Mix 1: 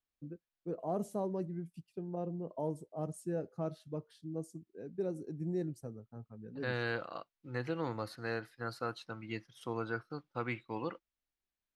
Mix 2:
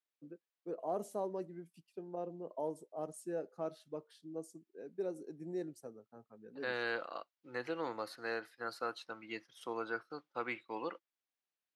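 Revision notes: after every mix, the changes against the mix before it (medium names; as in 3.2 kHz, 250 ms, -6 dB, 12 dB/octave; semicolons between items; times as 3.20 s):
master: add high-pass 350 Hz 12 dB/octave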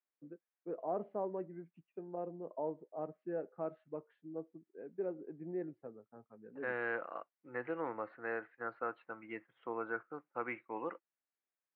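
master: add steep low-pass 2.3 kHz 36 dB/octave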